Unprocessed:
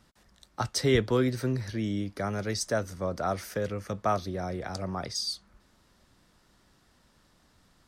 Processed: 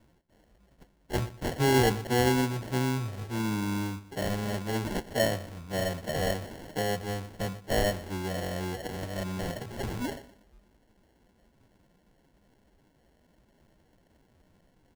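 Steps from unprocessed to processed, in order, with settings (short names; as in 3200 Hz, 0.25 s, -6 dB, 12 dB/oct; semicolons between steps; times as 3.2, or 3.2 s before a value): time stretch by phase-locked vocoder 1.9×; sample-and-hold 36×; feedback echo 0.12 s, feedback 34%, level -17 dB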